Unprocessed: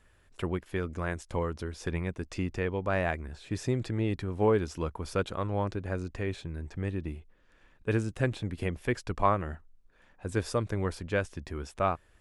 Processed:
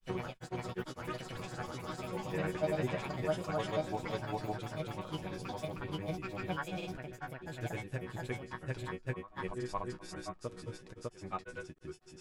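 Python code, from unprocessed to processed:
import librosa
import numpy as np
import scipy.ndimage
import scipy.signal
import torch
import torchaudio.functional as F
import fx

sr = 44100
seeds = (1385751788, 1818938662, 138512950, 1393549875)

y = fx.echo_pitch(x, sr, ms=106, semitones=6, count=3, db_per_echo=-3.0)
y = fx.resonator_bank(y, sr, root=47, chord='major', decay_s=0.31)
y = y + 10.0 ** (-20.0 / 20.0) * np.pad(y, (int(624 * sr / 1000.0), 0))[:len(y)]
y = fx.granulator(y, sr, seeds[0], grain_ms=100.0, per_s=20.0, spray_ms=937.0, spread_st=0)
y = y * 10.0 ** (6.5 / 20.0)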